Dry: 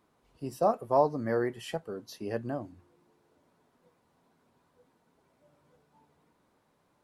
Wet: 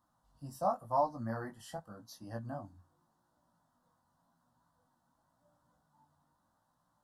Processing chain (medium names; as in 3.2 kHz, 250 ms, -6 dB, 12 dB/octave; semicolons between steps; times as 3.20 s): band-stop 2.1 kHz, Q 20; chorus 0.89 Hz, delay 16.5 ms, depth 4.7 ms; static phaser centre 1 kHz, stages 4